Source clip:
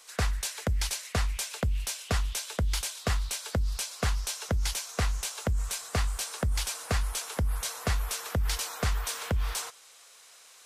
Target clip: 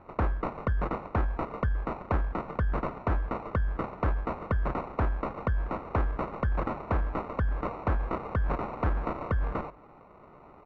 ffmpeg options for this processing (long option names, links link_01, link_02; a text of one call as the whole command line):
ffmpeg -i in.wav -filter_complex "[0:a]acrusher=samples=27:mix=1:aa=0.000001,lowpass=frequency=1400:width_type=q:width=2.4,asplit=2[link_01][link_02];[link_02]adelay=244.9,volume=-27dB,highshelf=frequency=4000:gain=-5.51[link_03];[link_01][link_03]amix=inputs=2:normalize=0" out.wav